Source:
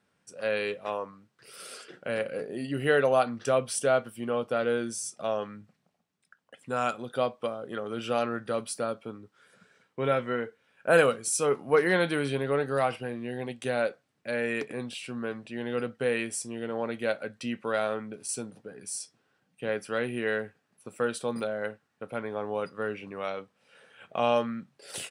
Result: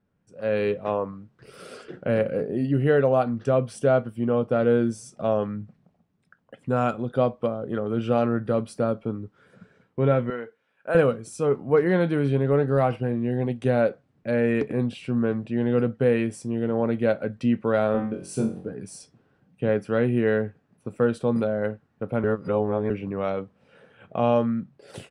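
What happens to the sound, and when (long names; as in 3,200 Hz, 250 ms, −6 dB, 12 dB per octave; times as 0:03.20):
0:10.30–0:10.95: high-pass filter 960 Hz 6 dB per octave
0:17.92–0:18.70: flutter between parallel walls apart 3.8 metres, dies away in 0.37 s
0:22.24–0:22.90: reverse
whole clip: spectral tilt −4 dB per octave; automatic gain control gain up to 11.5 dB; level −7 dB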